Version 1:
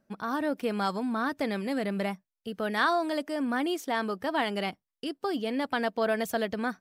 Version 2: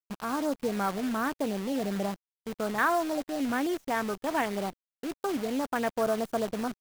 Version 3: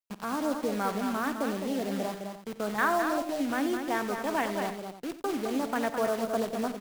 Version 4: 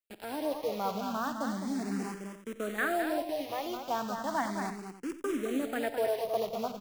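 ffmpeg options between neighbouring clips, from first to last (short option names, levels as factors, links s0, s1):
-af "afwtdn=0.0282,acrusher=bits=7:dc=4:mix=0:aa=0.000001"
-filter_complex "[0:a]acrossover=split=140|2900[s0][s1][s2];[s0]alimiter=level_in=23.7:limit=0.0631:level=0:latency=1,volume=0.0422[s3];[s3][s1][s2]amix=inputs=3:normalize=0,aecho=1:1:48|90|210|298:0.15|0.2|0.473|0.188,volume=0.891"
-filter_complex "[0:a]asplit=2[s0][s1];[s1]afreqshift=0.35[s2];[s0][s2]amix=inputs=2:normalize=1"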